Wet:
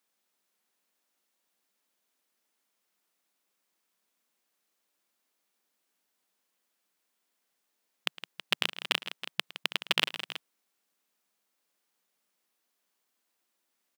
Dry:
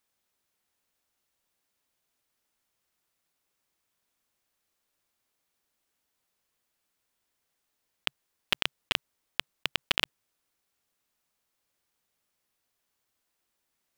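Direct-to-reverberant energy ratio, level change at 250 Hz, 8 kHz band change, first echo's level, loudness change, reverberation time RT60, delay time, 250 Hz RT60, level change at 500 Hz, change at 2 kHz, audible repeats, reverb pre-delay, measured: no reverb audible, 0.0 dB, +0.5 dB, −19.0 dB, 0.0 dB, no reverb audible, 110 ms, no reverb audible, +0.5 dB, +0.5 dB, 3, no reverb audible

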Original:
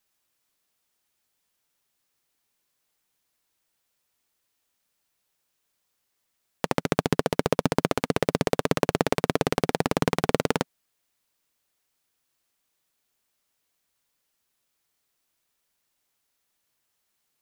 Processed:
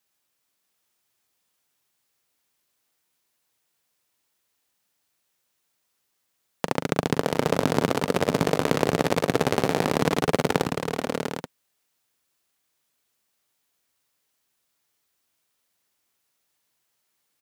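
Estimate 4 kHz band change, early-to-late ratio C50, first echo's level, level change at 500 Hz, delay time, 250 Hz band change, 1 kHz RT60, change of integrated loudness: +2.0 dB, no reverb audible, −11.0 dB, +2.0 dB, 41 ms, +2.0 dB, no reverb audible, +1.5 dB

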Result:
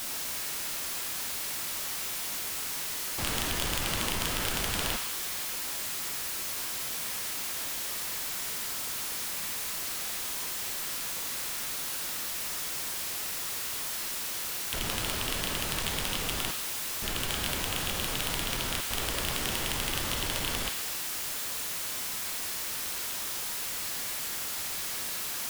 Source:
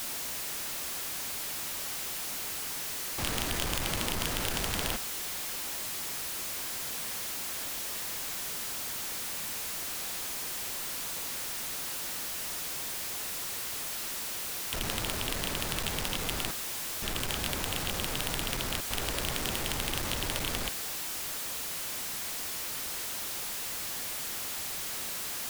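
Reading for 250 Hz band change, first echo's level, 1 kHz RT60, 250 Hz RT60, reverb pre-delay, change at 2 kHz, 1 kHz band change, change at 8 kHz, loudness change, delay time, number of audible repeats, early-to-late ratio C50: 0.0 dB, no echo audible, 1.2 s, 1.2 s, 6 ms, +2.0 dB, +1.5 dB, +2.0 dB, +1.5 dB, no echo audible, no echo audible, 6.0 dB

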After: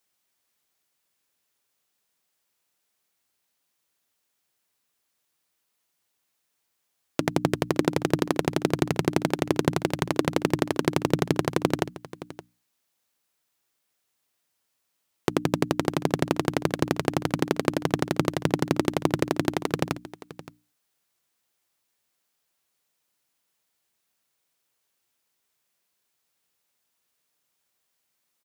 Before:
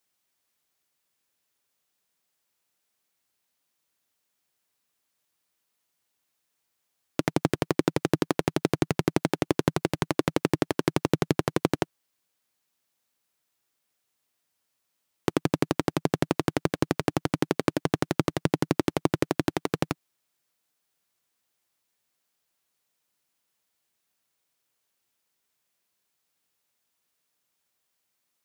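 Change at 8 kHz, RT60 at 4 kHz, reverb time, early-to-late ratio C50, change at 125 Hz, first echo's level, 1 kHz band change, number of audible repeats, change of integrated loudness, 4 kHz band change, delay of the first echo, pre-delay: +1.5 dB, no reverb audible, no reverb audible, no reverb audible, +1.0 dB, −16.5 dB, +1.5 dB, 1, +1.5 dB, +1.5 dB, 569 ms, no reverb audible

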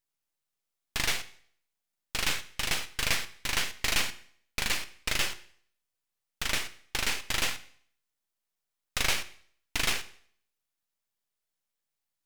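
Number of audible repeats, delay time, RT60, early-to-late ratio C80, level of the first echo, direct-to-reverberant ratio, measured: no echo audible, no echo audible, 0.60 s, 19.0 dB, no echo audible, 12.0 dB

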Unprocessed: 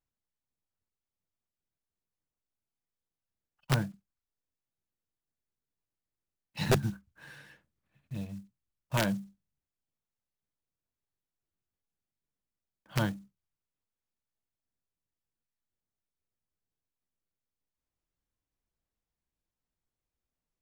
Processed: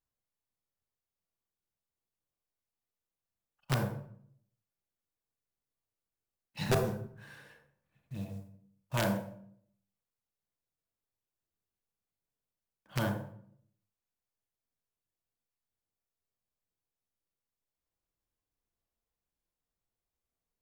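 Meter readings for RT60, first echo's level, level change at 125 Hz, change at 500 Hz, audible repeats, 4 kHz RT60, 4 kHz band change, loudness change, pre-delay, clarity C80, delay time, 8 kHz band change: 0.60 s, no echo audible, −2.5 dB, +0.5 dB, no echo audible, 0.45 s, −3.0 dB, −2.0 dB, 29 ms, 8.5 dB, no echo audible, −2.5 dB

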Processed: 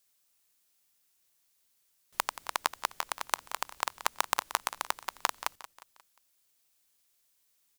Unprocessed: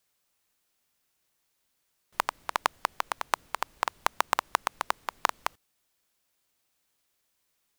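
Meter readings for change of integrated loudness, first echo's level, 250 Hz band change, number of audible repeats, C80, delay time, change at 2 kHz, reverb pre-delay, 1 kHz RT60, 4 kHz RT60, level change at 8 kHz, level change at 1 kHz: −2.0 dB, −15.0 dB, −5.0 dB, 3, no reverb audible, 178 ms, −2.5 dB, no reverb audible, no reverb audible, no reverb audible, +3.5 dB, −4.0 dB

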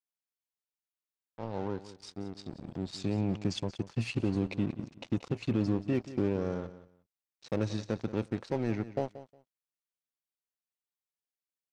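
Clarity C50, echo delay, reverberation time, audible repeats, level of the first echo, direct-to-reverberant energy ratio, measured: no reverb audible, 180 ms, no reverb audible, 2, −15.0 dB, no reverb audible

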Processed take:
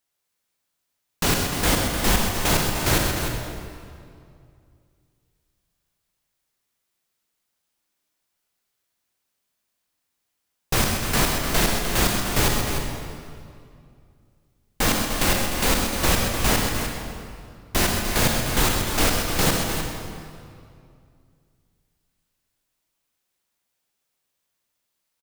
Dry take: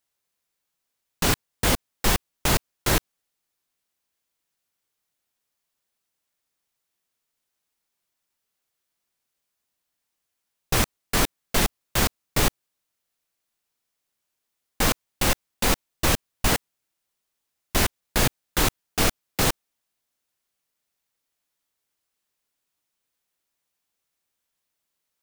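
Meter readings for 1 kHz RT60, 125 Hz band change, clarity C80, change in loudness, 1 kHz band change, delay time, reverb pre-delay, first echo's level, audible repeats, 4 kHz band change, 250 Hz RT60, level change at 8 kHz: 2.3 s, +3.5 dB, 1.5 dB, +2.5 dB, +3.0 dB, 128 ms, 26 ms, −8.0 dB, 2, +3.0 dB, 2.7 s, +3.0 dB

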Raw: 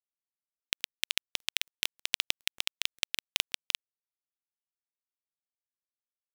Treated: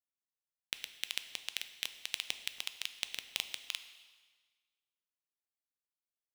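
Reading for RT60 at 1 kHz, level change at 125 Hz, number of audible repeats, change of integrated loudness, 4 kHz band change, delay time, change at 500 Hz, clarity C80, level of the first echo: 1.5 s, can't be measured, no echo audible, −6.5 dB, −6.5 dB, no echo audible, −6.5 dB, 13.0 dB, no echo audible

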